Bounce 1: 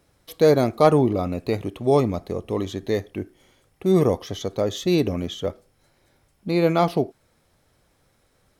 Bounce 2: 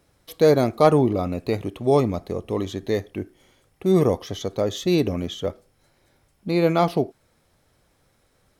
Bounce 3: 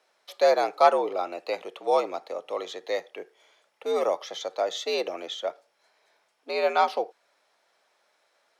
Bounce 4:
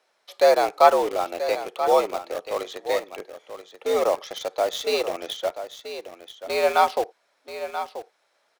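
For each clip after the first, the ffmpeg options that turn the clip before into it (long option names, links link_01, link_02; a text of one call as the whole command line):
ffmpeg -i in.wav -af anull out.wav
ffmpeg -i in.wav -filter_complex "[0:a]afreqshift=75,highpass=340,acrossover=split=470 6900:gain=0.0891 1 0.2[link_01][link_02][link_03];[link_01][link_02][link_03]amix=inputs=3:normalize=0" out.wav
ffmpeg -i in.wav -filter_complex "[0:a]asplit=2[link_01][link_02];[link_02]acrusher=bits=4:mix=0:aa=0.000001,volume=-6dB[link_03];[link_01][link_03]amix=inputs=2:normalize=0,aecho=1:1:983:0.282" out.wav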